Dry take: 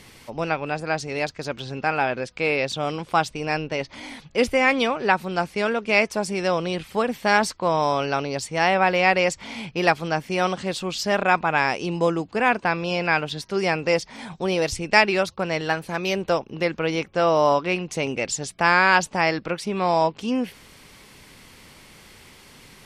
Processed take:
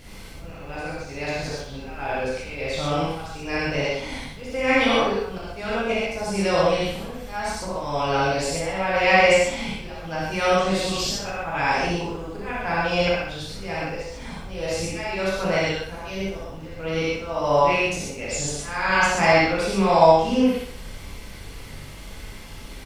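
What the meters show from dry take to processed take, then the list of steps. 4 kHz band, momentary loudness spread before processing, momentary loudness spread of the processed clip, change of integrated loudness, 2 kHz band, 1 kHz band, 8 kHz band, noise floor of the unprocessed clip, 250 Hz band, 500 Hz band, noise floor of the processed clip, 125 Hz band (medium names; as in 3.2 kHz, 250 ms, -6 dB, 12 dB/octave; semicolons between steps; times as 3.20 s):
+0.5 dB, 9 LU, 20 LU, -0.5 dB, -2.0 dB, -1.0 dB, +2.0 dB, -49 dBFS, 0.0 dB, +0.5 dB, -39 dBFS, +1.0 dB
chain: slow attack 527 ms; added noise brown -41 dBFS; on a send: feedback delay 62 ms, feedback 45%, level -7 dB; on the sum: gated-style reverb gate 170 ms flat, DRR -8 dB; trim -5.5 dB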